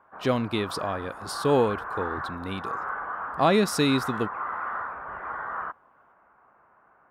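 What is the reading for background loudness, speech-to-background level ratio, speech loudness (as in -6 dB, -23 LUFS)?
-34.0 LUFS, 7.5 dB, -26.5 LUFS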